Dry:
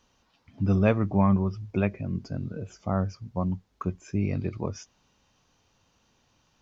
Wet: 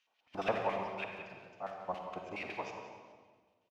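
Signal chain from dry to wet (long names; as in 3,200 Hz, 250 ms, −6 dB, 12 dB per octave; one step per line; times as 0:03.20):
spectral envelope flattened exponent 0.6
mains-hum notches 50/100/150/200 Hz
in parallel at −8 dB: centre clipping without the shift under −24 dBFS
on the sum: phase-vocoder stretch with locked phases 0.56×
sample-and-hold tremolo 1.6 Hz, depth 75%
auto-filter band-pass square 7.2 Hz 780–2,600 Hz
slap from a distant wall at 31 metres, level −10 dB
on a send at −3.5 dB: convolution reverb RT60 1.6 s, pre-delay 43 ms
on the sum: level +1.5 dB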